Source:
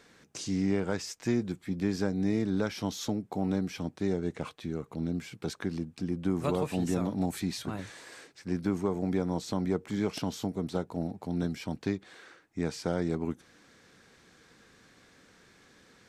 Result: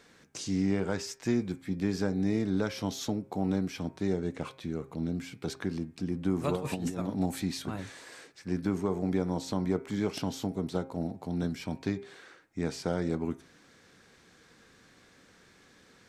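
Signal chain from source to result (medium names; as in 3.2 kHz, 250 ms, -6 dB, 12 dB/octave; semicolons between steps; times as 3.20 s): de-hum 133.3 Hz, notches 19; reverberation RT60 0.40 s, pre-delay 8 ms, DRR 19.5 dB; 6.55–7.09 s: compressor with a negative ratio -32 dBFS, ratio -0.5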